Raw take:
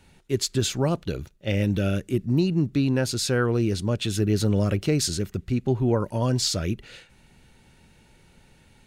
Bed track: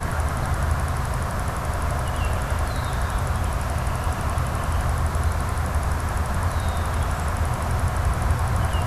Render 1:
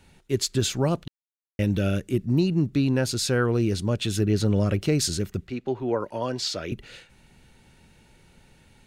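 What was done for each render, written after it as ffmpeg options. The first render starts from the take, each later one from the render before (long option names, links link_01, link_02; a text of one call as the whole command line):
ffmpeg -i in.wav -filter_complex "[0:a]asettb=1/sr,asplit=3[link_01][link_02][link_03];[link_01]atrim=end=4.234[link_04];[link_02]atrim=start=4.23:end=4.74,asetpts=PTS-STARTPTS,afade=type=in:duration=0.004:curve=qsin,afade=type=out:start_time=0.506:duration=0.004:curve=qsin,highshelf=frequency=9500:gain=-9.5[link_05];[link_03]atrim=start=4.736[link_06];[link_04][link_05]acrossfade=duration=0.004:curve1=hsin:curve2=qsin[link_07];[link_07][link_06]acrossfade=duration=0.004:curve1=qsin:curve2=hsin,asettb=1/sr,asplit=3[link_08][link_09][link_10];[link_08]atrim=end=5.474[link_11];[link_09]atrim=start=5.47:end=6.72,asetpts=PTS-STARTPTS,afade=type=in:duration=0.004:curve=qsin,afade=type=out:start_time=1.246:duration=0.004:curve=qsin,acrossover=split=290 5200:gain=0.2 1 0.251[link_12][link_13][link_14];[link_12][link_13][link_14]amix=inputs=3:normalize=0[link_15];[link_10]atrim=start=6.716[link_16];[link_11][link_15]acrossfade=duration=0.004:curve1=hsin:curve2=qsin[link_17];[link_17][link_16]acrossfade=duration=0.004:curve1=qsin:curve2=hsin,asplit=3[link_18][link_19][link_20];[link_18]atrim=end=1.08,asetpts=PTS-STARTPTS,afade=type=out:start_time=1.076:duration=0.004:curve=hsin[link_21];[link_19]atrim=start=1.08:end=1.59,asetpts=PTS-STARTPTS,volume=0[link_22];[link_20]atrim=start=1.59,asetpts=PTS-STARTPTS,afade=type=in:duration=0.004:curve=hsin[link_23];[link_21][link_22][link_23]concat=n=3:v=0:a=1" out.wav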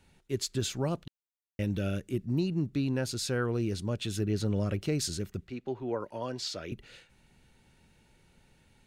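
ffmpeg -i in.wav -af "volume=-7.5dB" out.wav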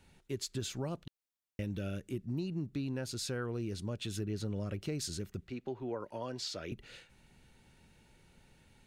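ffmpeg -i in.wav -af "acompressor=threshold=-39dB:ratio=2" out.wav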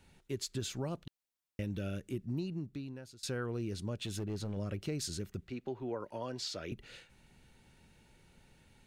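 ffmpeg -i in.wav -filter_complex "[0:a]asettb=1/sr,asplit=3[link_01][link_02][link_03];[link_01]atrim=end=4.024[link_04];[link_02]atrim=start=4.02:end=4.57,asetpts=PTS-STARTPTS,afade=type=in:duration=0.004:curve=qsin,afade=type=out:start_time=0.546:duration=0.004:curve=qsin,volume=33dB,asoftclip=hard,volume=-33dB[link_05];[link_03]atrim=start=4.566[link_06];[link_04][link_05]acrossfade=duration=0.004:curve1=hsin:curve2=qsin[link_07];[link_07][link_06]acrossfade=duration=0.004:curve1=qsin:curve2=hsin,asplit=2[link_08][link_09];[link_08]atrim=end=3.23,asetpts=PTS-STARTPTS,afade=type=out:start_time=2.36:duration=0.87:silence=0.0749894[link_10];[link_09]atrim=start=3.23,asetpts=PTS-STARTPTS,afade=type=in:duration=0.004:curve=hsin:silence=0.0749894[link_11];[link_10][link_11]concat=n=2:v=0:a=1" out.wav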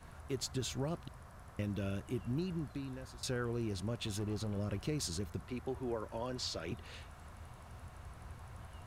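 ffmpeg -i in.wav -i bed.wav -filter_complex "[1:a]volume=-28.5dB[link_01];[0:a][link_01]amix=inputs=2:normalize=0" out.wav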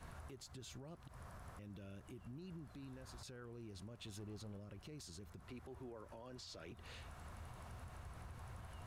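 ffmpeg -i in.wav -af "acompressor=threshold=-46dB:ratio=6,alimiter=level_in=20dB:limit=-24dB:level=0:latency=1:release=63,volume=-20dB" out.wav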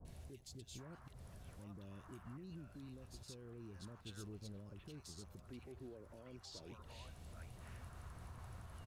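ffmpeg -i in.wav -filter_complex "[0:a]acrossover=split=710|2200[link_01][link_02][link_03];[link_03]adelay=50[link_04];[link_02]adelay=780[link_05];[link_01][link_05][link_04]amix=inputs=3:normalize=0" out.wav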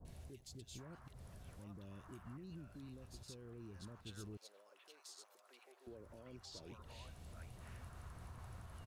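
ffmpeg -i in.wav -filter_complex "[0:a]asettb=1/sr,asplit=3[link_01][link_02][link_03];[link_01]atrim=end=4.374[link_04];[link_02]atrim=start=4.37:end=5.87,asetpts=PTS-STARTPTS,afade=type=in:duration=0.004:curve=qsin,afade=type=out:start_time=1.496:duration=0.004:curve=qsin,highpass=frequency=530:width=0.5412,highpass=frequency=530:width=1.3066[link_05];[link_03]atrim=start=5.866[link_06];[link_04][link_05]acrossfade=duration=0.004:curve1=hsin:curve2=qsin[link_07];[link_07][link_06]acrossfade=duration=0.004:curve1=qsin:curve2=hsin" out.wav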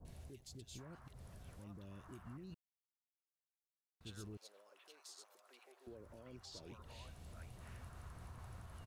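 ffmpeg -i in.wav -filter_complex "[0:a]asettb=1/sr,asplit=3[link_01][link_02][link_03];[link_01]atrim=end=2.544[link_04];[link_02]atrim=start=2.54:end=4.01,asetpts=PTS-STARTPTS,afade=type=in:duration=0.004:curve=qsin,afade=type=out:start_time=1.466:duration=0.004:curve=qsin,acrusher=bits=3:dc=4:mix=0:aa=0.000001[link_05];[link_03]atrim=start=4.006[link_06];[link_04][link_05]acrossfade=duration=0.004:curve1=hsin:curve2=qsin[link_07];[link_07][link_06]acrossfade=duration=0.004:curve1=qsin:curve2=hsin" out.wav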